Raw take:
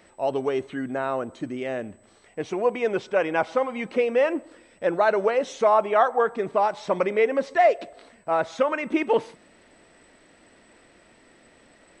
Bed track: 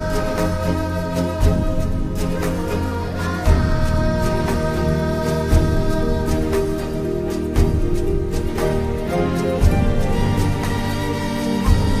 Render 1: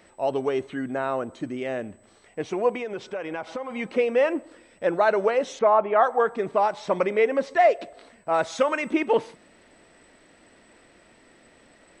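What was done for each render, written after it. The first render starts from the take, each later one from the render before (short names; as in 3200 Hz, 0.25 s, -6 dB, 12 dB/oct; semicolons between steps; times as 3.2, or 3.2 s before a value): 2.77–3.71 compressor, threshold -28 dBFS; 5.59–6.03 LPF 2200 Hz; 8.34–8.91 high shelf 4700 Hz +12 dB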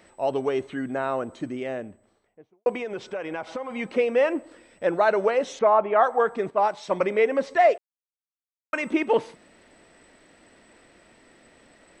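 1.41–2.66 studio fade out; 6.5–7.01 three-band expander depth 100%; 7.78–8.73 mute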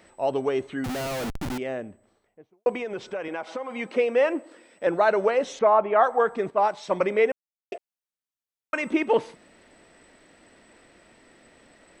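0.84–1.58 Schmitt trigger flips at -37 dBFS; 3.28–4.87 HPF 220 Hz; 7.32–7.72 mute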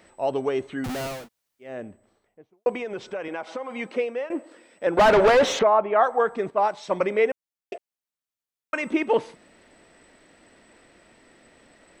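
1.17–1.71 room tone, crossfade 0.24 s; 3.86–4.3 fade out, to -16.5 dB; 4.97–5.63 overdrive pedal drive 28 dB, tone 1900 Hz, clips at -9 dBFS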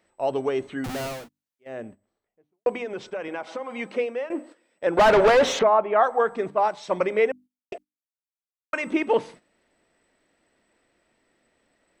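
notches 50/100/150/200/250/300 Hz; gate -43 dBFS, range -13 dB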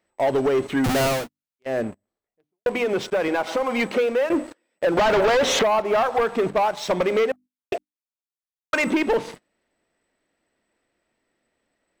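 compressor 12:1, threshold -24 dBFS, peak gain reduction 11 dB; sample leveller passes 3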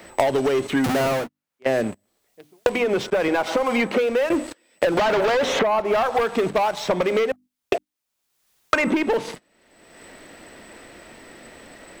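three-band squash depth 100%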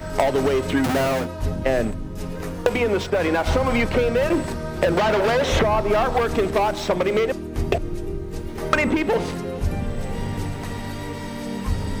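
add bed track -9 dB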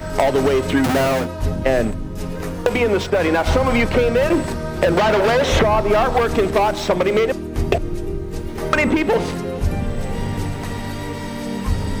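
gain +3.5 dB; limiter -2 dBFS, peak gain reduction 2.5 dB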